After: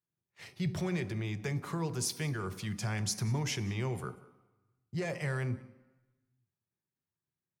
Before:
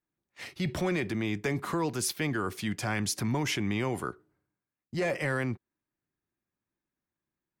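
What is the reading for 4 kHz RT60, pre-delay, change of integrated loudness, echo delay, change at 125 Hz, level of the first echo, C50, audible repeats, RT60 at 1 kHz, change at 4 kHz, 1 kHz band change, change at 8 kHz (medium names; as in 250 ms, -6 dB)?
0.90 s, 3 ms, -4.0 dB, 187 ms, +0.5 dB, -22.0 dB, 14.0 dB, 1, 1.1 s, -4.0 dB, -7.5 dB, -2.5 dB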